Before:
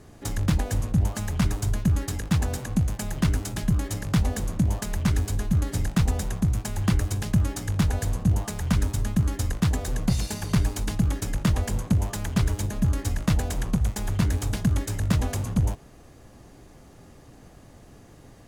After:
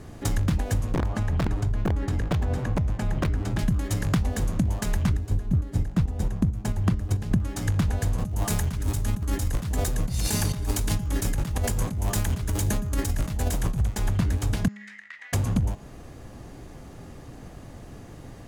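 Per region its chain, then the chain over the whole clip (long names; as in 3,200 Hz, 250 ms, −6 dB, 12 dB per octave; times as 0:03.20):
0:00.94–0:03.59: wrap-around overflow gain 14 dB + downward compressor 4 to 1, threshold −25 dBFS + low-pass filter 1,800 Hz 6 dB per octave
0:05.09–0:07.40: tilt shelving filter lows +4 dB, about 930 Hz + square-wave tremolo 4.5 Hz, depth 60%, duty 35%
0:08.18–0:13.81: high-shelf EQ 6,400 Hz +10.5 dB + compressor whose output falls as the input rises −30 dBFS
0:14.68–0:15.33: four-pole ladder band-pass 2,000 Hz, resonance 85% + downward compressor 10 to 1, threshold −42 dBFS
whole clip: bass and treble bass +2 dB, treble −3 dB; hum removal 206.2 Hz, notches 37; downward compressor, threshold −26 dBFS; level +5.5 dB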